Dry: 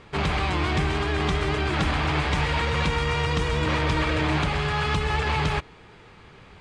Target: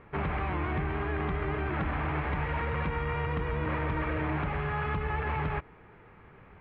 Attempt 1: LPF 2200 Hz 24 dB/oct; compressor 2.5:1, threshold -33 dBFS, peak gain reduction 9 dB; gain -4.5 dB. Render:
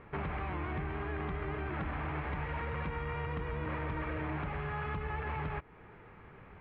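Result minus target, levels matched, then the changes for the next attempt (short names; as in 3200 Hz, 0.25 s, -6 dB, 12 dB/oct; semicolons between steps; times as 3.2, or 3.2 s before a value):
compressor: peak gain reduction +6 dB
change: compressor 2.5:1, threshold -23 dBFS, peak gain reduction 3 dB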